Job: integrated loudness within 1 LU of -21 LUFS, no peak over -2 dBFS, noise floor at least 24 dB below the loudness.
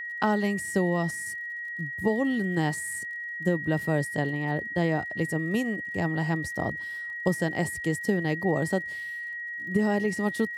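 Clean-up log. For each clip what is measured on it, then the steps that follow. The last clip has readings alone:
tick rate 49 per s; steady tone 1.9 kHz; tone level -33 dBFS; loudness -28.0 LUFS; peak level -11.5 dBFS; loudness target -21.0 LUFS
-> de-click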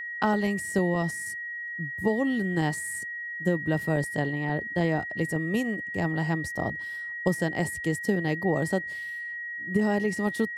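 tick rate 0.19 per s; steady tone 1.9 kHz; tone level -33 dBFS
-> band-stop 1.9 kHz, Q 30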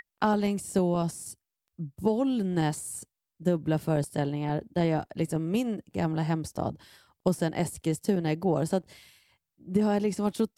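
steady tone not found; loudness -29.0 LUFS; peak level -12.0 dBFS; loudness target -21.0 LUFS
-> trim +8 dB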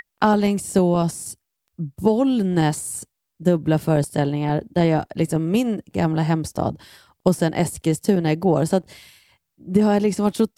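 loudness -21.0 LUFS; peak level -4.0 dBFS; noise floor -79 dBFS

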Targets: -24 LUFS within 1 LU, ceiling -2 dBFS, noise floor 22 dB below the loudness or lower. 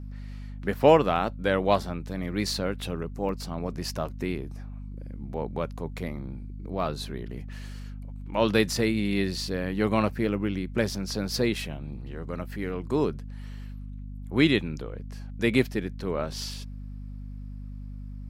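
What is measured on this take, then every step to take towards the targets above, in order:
dropouts 3; longest dropout 1.9 ms; hum 50 Hz; highest harmonic 250 Hz; hum level -36 dBFS; loudness -28.0 LUFS; peak level -4.5 dBFS; loudness target -24.0 LUFS
-> interpolate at 1.16/3.29/11.55 s, 1.9 ms; de-hum 50 Hz, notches 5; trim +4 dB; peak limiter -2 dBFS

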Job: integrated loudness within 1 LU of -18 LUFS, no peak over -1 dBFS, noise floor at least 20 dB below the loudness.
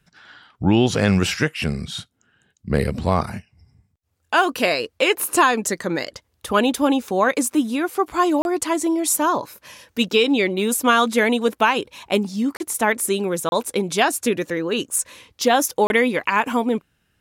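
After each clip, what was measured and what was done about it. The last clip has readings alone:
dropouts 4; longest dropout 31 ms; loudness -20.5 LUFS; peak level -5.0 dBFS; loudness target -18.0 LUFS
-> interpolate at 8.42/12.57/13.49/15.87 s, 31 ms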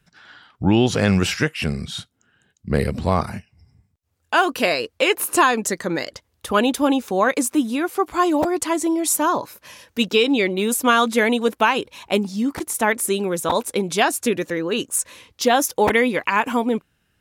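dropouts 0; loudness -20.0 LUFS; peak level -5.0 dBFS; loudness target -18.0 LUFS
-> trim +2 dB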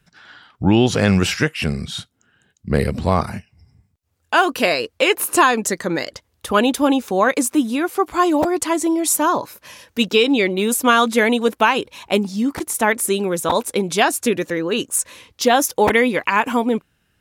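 loudness -18.0 LUFS; peak level -3.0 dBFS; noise floor -67 dBFS

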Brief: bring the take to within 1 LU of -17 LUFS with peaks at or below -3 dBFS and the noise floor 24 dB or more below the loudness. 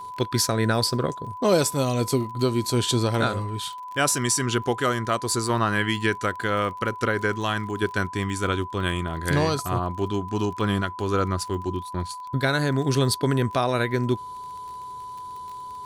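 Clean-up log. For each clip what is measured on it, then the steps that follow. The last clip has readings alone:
tick rate 35 per s; steady tone 1 kHz; tone level -34 dBFS; loudness -24.5 LUFS; peak level -7.5 dBFS; loudness target -17.0 LUFS
-> de-click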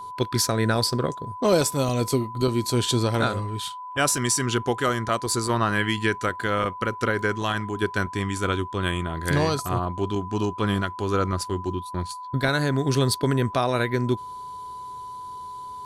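tick rate 0.32 per s; steady tone 1 kHz; tone level -34 dBFS
-> band-stop 1 kHz, Q 30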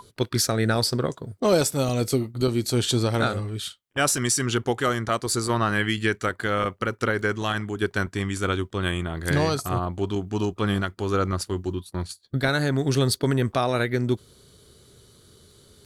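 steady tone not found; loudness -25.0 LUFS; peak level -7.5 dBFS; loudness target -17.0 LUFS
-> trim +8 dB; peak limiter -3 dBFS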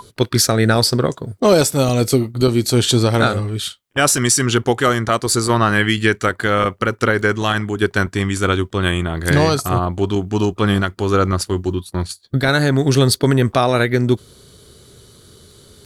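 loudness -17.0 LUFS; peak level -3.0 dBFS; noise floor -50 dBFS

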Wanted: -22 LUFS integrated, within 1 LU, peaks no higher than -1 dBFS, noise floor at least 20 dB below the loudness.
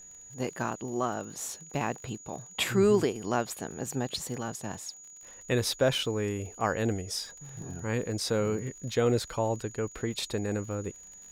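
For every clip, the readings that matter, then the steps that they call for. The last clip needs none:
tick rate 34 per s; steady tone 6.8 kHz; tone level -47 dBFS; loudness -31.0 LUFS; peak level -13.0 dBFS; loudness target -22.0 LUFS
-> de-click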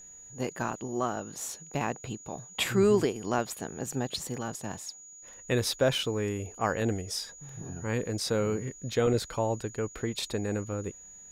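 tick rate 0 per s; steady tone 6.8 kHz; tone level -47 dBFS
-> band-stop 6.8 kHz, Q 30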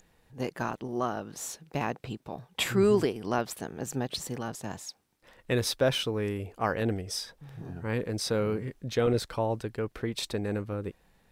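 steady tone not found; loudness -31.0 LUFS; peak level -13.0 dBFS; loudness target -22.0 LUFS
-> trim +9 dB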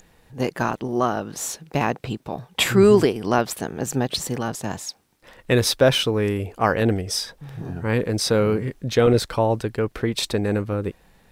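loudness -22.0 LUFS; peak level -4.0 dBFS; noise floor -58 dBFS

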